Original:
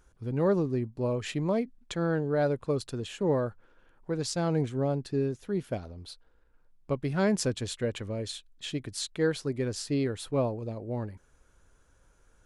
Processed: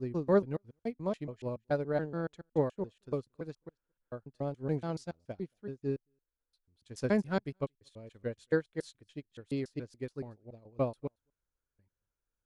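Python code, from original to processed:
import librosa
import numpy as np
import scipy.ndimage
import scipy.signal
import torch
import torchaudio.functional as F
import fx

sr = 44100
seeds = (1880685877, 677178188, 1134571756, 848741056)

p1 = fx.block_reorder(x, sr, ms=142.0, group=6)
p2 = fx.high_shelf(p1, sr, hz=8000.0, db=-2.0)
p3 = fx.notch(p2, sr, hz=7600.0, q=28.0)
p4 = p3 + fx.echo_single(p3, sr, ms=226, db=-23.0, dry=0)
p5 = fx.upward_expand(p4, sr, threshold_db=-41.0, expansion=2.5)
y = p5 * librosa.db_to_amplitude(1.0)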